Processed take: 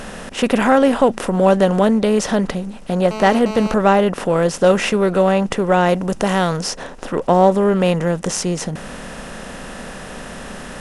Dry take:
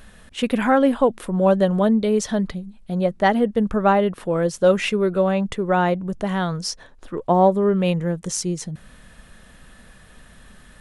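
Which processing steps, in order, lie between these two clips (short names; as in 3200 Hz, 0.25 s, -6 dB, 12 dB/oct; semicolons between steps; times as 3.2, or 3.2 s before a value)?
per-bin compression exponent 0.6; 3.11–3.74 GSM buzz -28 dBFS; 5.89–6.57 high shelf 4300 Hz +6 dB; gain +1 dB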